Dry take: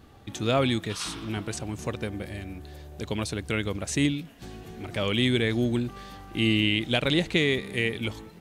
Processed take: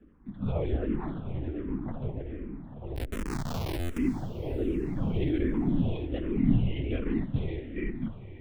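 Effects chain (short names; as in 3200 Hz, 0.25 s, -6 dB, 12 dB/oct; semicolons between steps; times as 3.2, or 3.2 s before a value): bin magnitudes rounded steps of 15 dB; bell 210 Hz +14 dB 0.68 oct; reverb RT60 0.35 s, pre-delay 42 ms, DRR 10 dB; echoes that change speed 0.317 s, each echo +3 st, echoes 2; LPF 1600 Hz 12 dB/oct; LPC vocoder at 8 kHz whisper; 2.96–3.98 Schmitt trigger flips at -23 dBFS; diffused feedback echo 0.456 s, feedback 53%, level -14 dB; stuck buffer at 3.79, samples 512, times 8; endless phaser -1.3 Hz; gain -7.5 dB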